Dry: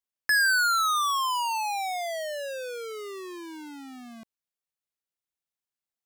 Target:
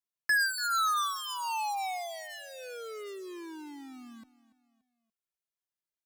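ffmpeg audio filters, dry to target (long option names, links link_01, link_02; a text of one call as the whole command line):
ffmpeg -i in.wav -filter_complex "[0:a]aecho=1:1:288|576|864:0.112|0.046|0.0189,asplit=2[link_01][link_02];[link_02]adelay=2.4,afreqshift=-0.38[link_03];[link_01][link_03]amix=inputs=2:normalize=1,volume=-2.5dB" out.wav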